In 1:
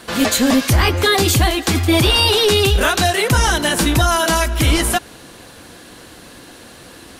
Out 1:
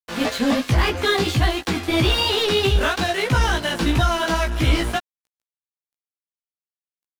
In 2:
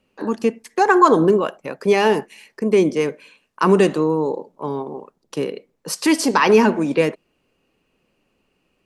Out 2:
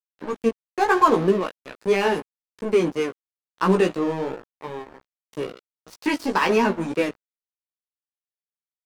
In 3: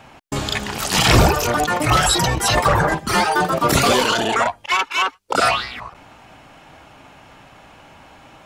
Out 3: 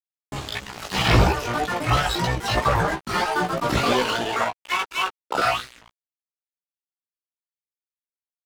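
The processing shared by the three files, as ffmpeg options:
ffmpeg -i in.wav -filter_complex "[0:a]acrossover=split=5000[link_01][link_02];[link_02]acompressor=threshold=-38dB:ratio=4:attack=1:release=60[link_03];[link_01][link_03]amix=inputs=2:normalize=0,aeval=exprs='sgn(val(0))*max(abs(val(0))-0.0422,0)':channel_layout=same,flanger=delay=15.5:depth=2.2:speed=3" out.wav

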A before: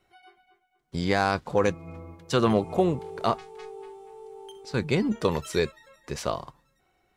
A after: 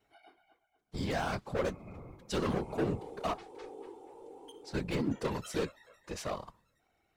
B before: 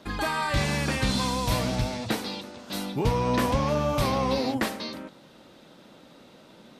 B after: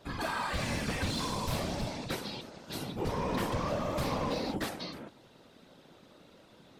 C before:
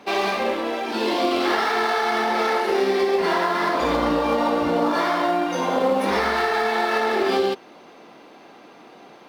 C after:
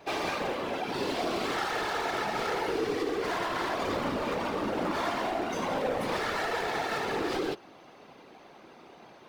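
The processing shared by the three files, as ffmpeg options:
ffmpeg -i in.wav -af "volume=22.5dB,asoftclip=hard,volume=-22.5dB,afftfilt=real='hypot(re,im)*cos(2*PI*random(0))':imag='hypot(re,im)*sin(2*PI*random(1))':win_size=512:overlap=0.75" out.wav

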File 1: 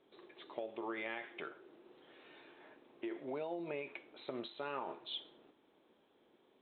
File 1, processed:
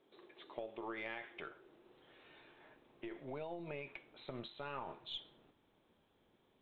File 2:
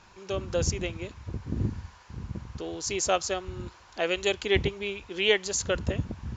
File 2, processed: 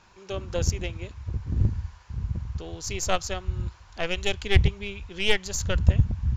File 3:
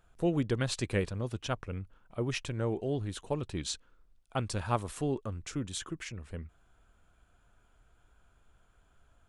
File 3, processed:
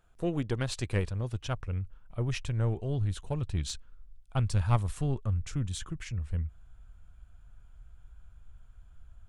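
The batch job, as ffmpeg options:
ffmpeg -i in.wav -af "aeval=exprs='0.473*(cos(1*acos(clip(val(0)/0.473,-1,1)))-cos(1*PI/2))+0.0473*(cos(4*acos(clip(val(0)/0.473,-1,1)))-cos(4*PI/2))+0.0106*(cos(5*acos(clip(val(0)/0.473,-1,1)))-cos(5*PI/2))+0.0211*(cos(7*acos(clip(val(0)/0.473,-1,1)))-cos(7*PI/2))':channel_layout=same,asubboost=boost=7.5:cutoff=120" out.wav

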